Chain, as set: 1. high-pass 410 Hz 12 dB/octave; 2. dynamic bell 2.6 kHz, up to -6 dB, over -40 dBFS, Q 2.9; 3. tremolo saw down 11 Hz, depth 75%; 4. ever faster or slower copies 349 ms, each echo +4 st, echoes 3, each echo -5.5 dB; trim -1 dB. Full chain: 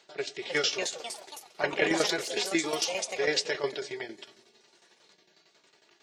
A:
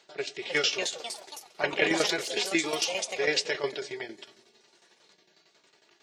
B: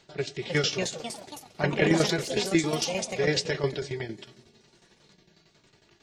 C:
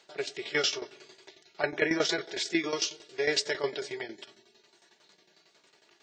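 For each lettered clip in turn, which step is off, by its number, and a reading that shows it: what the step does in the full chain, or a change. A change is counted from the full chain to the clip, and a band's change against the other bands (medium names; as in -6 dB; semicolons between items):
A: 2, 2 kHz band +2.0 dB; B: 1, 125 Hz band +17.0 dB; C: 4, momentary loudness spread change -1 LU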